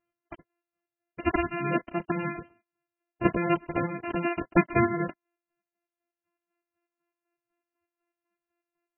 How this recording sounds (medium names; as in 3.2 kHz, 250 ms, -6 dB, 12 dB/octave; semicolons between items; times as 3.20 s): a buzz of ramps at a fixed pitch in blocks of 128 samples; chopped level 4 Hz, depth 60%, duty 45%; MP3